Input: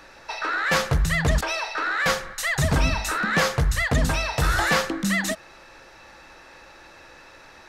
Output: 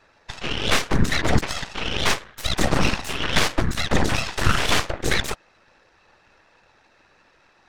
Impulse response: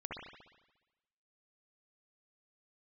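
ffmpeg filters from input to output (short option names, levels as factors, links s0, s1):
-af "afftfilt=real='hypot(re,im)*cos(2*PI*random(0))':imag='hypot(re,im)*sin(2*PI*random(1))':win_size=512:overlap=0.75,adynamicsmooth=sensitivity=5:basefreq=7900,aeval=exprs='0.282*(cos(1*acos(clip(val(0)/0.282,-1,1)))-cos(1*PI/2))+0.0562*(cos(3*acos(clip(val(0)/0.282,-1,1)))-cos(3*PI/2))+0.0891*(cos(4*acos(clip(val(0)/0.282,-1,1)))-cos(4*PI/2))+0.0316*(cos(7*acos(clip(val(0)/0.282,-1,1)))-cos(7*PI/2))+0.0631*(cos(8*acos(clip(val(0)/0.282,-1,1)))-cos(8*PI/2))':c=same,volume=1.58"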